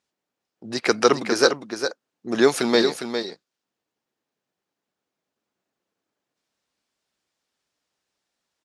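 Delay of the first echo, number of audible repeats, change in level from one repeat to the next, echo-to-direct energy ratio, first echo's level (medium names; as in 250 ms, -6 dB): 406 ms, 1, no regular repeats, -8.0 dB, -8.0 dB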